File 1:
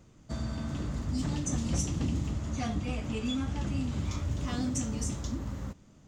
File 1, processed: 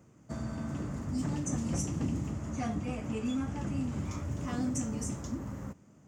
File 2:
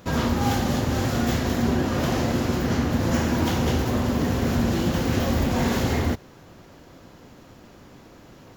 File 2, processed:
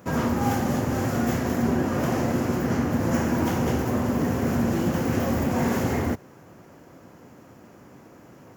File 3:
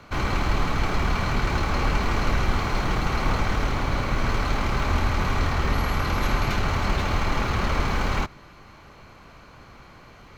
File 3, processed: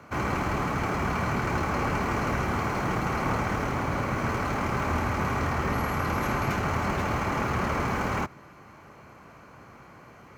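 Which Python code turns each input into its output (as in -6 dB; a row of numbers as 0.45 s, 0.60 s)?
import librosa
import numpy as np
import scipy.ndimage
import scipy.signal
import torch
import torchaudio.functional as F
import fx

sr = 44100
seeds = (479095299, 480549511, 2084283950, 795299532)

y = scipy.signal.sosfilt(scipy.signal.butter(2, 100.0, 'highpass', fs=sr, output='sos'), x)
y = fx.peak_eq(y, sr, hz=3800.0, db=-12.0, octaves=0.87)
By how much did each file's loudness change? -2.0 LU, -1.0 LU, -2.5 LU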